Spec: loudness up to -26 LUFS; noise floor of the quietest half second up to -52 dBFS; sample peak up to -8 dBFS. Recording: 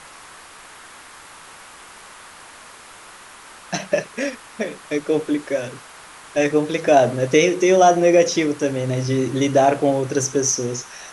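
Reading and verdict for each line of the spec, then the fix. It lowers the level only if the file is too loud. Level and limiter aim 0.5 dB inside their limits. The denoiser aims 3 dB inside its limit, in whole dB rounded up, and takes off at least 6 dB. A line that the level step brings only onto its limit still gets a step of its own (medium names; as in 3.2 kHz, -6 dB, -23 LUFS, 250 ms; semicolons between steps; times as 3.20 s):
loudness -19.0 LUFS: fail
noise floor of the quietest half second -42 dBFS: fail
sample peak -2.5 dBFS: fail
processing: noise reduction 6 dB, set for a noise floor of -42 dBFS; trim -7.5 dB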